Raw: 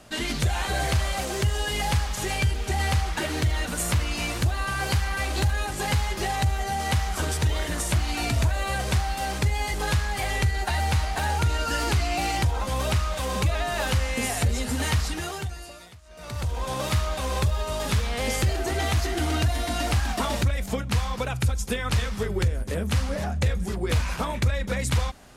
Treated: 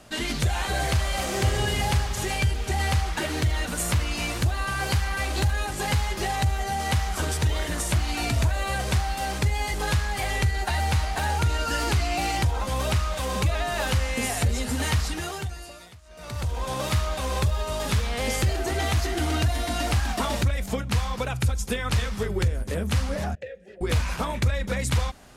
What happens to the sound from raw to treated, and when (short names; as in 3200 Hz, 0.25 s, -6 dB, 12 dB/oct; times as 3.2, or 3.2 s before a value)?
1.05–1.55 reverb throw, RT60 2.7 s, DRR 0.5 dB
23.35–23.81 vowel filter e